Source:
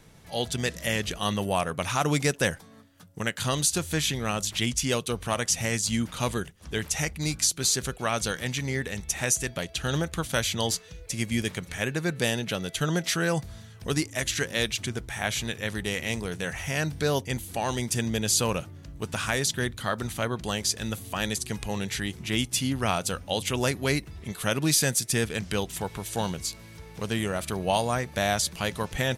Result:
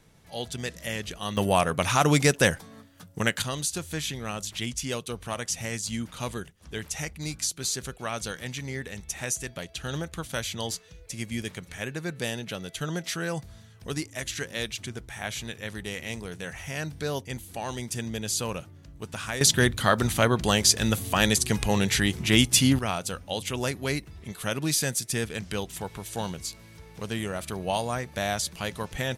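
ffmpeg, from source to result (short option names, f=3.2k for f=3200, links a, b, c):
-af "asetnsamples=n=441:p=0,asendcmd='1.37 volume volume 4dB;3.42 volume volume -5dB;19.41 volume volume 7dB;22.79 volume volume -3dB',volume=-5dB"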